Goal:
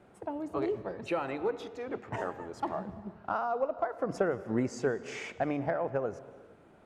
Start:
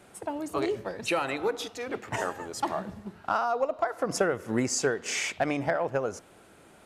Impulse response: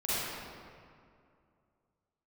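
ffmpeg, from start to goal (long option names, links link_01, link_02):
-filter_complex "[0:a]lowpass=frequency=1000:poles=1,asplit=2[link_01][link_02];[1:a]atrim=start_sample=2205,afade=type=out:start_time=0.42:duration=0.01,atrim=end_sample=18963,adelay=115[link_03];[link_02][link_03]afir=irnorm=-1:irlink=0,volume=-25.5dB[link_04];[link_01][link_04]amix=inputs=2:normalize=0,volume=-2dB"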